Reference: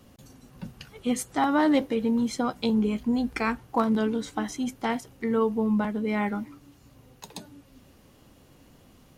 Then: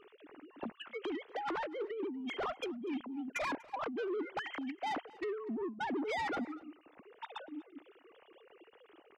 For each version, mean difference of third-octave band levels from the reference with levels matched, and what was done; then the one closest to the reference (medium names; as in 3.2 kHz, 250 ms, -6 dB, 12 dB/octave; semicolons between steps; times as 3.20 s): 11.0 dB: formants replaced by sine waves; compressor with a negative ratio -34 dBFS, ratio -1; saturation -30.5 dBFS, distortion -12 dB; delay 242 ms -22.5 dB; trim -2 dB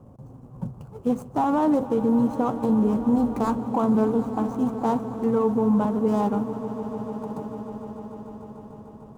7.5 dB: median filter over 25 samples; graphic EQ 125/500/1000/2000/4000/8000 Hz +10/+4/+9/-10/-8/+3 dB; peak limiter -16 dBFS, peak gain reduction 8 dB; on a send: echo with a slow build-up 149 ms, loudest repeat 5, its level -17 dB; on the sum: trim +1.5 dB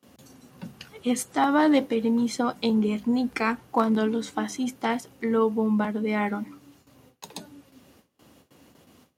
1.5 dB: peaking EQ 110 Hz -6 dB 0.85 oct; hum notches 50/100/150/200 Hz; gate with hold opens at -46 dBFS; high-pass 80 Hz 24 dB/octave; trim +2 dB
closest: third